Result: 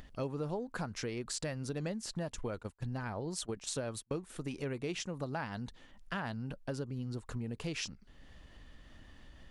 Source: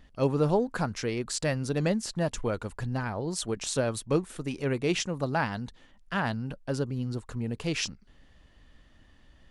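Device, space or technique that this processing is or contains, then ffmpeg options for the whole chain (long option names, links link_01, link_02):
upward and downward compression: -filter_complex "[0:a]asplit=3[link_01][link_02][link_03];[link_01]afade=type=out:start_time=2.32:duration=0.02[link_04];[link_02]agate=range=-32dB:threshold=-34dB:ratio=16:detection=peak,afade=type=in:start_time=2.32:duration=0.02,afade=type=out:start_time=4.19:duration=0.02[link_05];[link_03]afade=type=in:start_time=4.19:duration=0.02[link_06];[link_04][link_05][link_06]amix=inputs=3:normalize=0,acompressor=mode=upward:threshold=-46dB:ratio=2.5,acompressor=threshold=-35dB:ratio=4,volume=-1dB"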